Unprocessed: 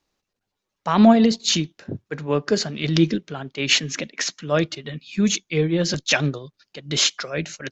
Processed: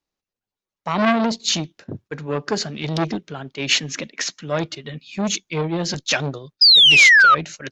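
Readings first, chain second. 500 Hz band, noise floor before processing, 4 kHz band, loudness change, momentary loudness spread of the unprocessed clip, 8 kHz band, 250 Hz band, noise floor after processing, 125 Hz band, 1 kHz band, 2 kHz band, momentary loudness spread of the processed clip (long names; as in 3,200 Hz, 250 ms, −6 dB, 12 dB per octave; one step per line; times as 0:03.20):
−2.5 dB, −82 dBFS, +8.5 dB, +5.5 dB, 15 LU, can't be measured, −5.0 dB, below −85 dBFS, −3.0 dB, +5.5 dB, +12.0 dB, 23 LU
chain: noise gate −43 dBFS, range −10 dB
sound drawn into the spectrogram fall, 0:06.61–0:07.35, 1,200–5,100 Hz −10 dBFS
saturating transformer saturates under 1,500 Hz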